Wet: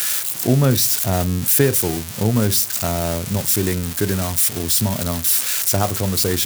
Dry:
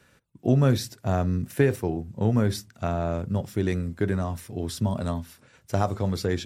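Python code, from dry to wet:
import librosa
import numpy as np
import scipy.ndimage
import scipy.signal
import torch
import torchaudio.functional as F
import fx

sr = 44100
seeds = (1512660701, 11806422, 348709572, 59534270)

y = x + 0.5 * 10.0 ** (-15.5 / 20.0) * np.diff(np.sign(x), prepend=np.sign(x[:1]))
y = F.gain(torch.from_numpy(y), 4.5).numpy()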